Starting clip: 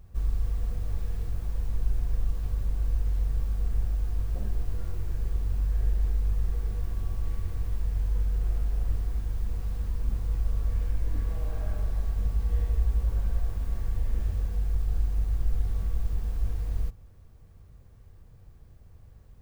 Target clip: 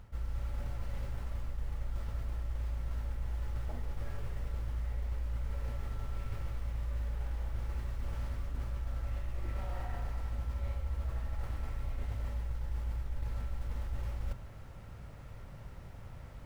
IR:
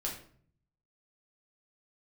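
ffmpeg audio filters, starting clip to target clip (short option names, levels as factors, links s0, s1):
-af "equalizer=f=1300:w=0.32:g=10,areverse,acompressor=threshold=0.0141:ratio=5,areverse,asetrate=52038,aresample=44100,volume=1.41"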